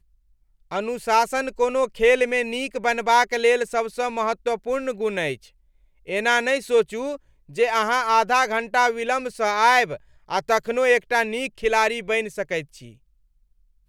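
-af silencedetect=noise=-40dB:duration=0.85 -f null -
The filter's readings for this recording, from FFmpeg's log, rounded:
silence_start: 12.93
silence_end: 13.88 | silence_duration: 0.95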